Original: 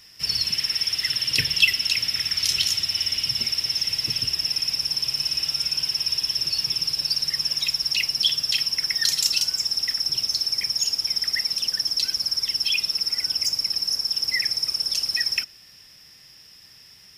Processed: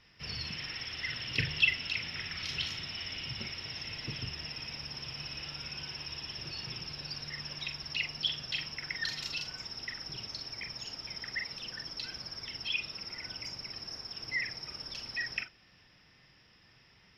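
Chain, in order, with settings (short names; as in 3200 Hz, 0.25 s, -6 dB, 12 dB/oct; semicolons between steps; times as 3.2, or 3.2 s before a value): air absorption 320 m; reverb, pre-delay 41 ms, DRR 6.5 dB; gain -3 dB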